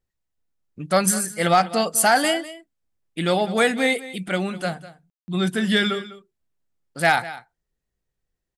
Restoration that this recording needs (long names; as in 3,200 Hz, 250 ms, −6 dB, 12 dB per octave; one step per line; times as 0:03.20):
clipped peaks rebuilt −8 dBFS
ambience match 0:05.10–0:05.28
echo removal 200 ms −16.5 dB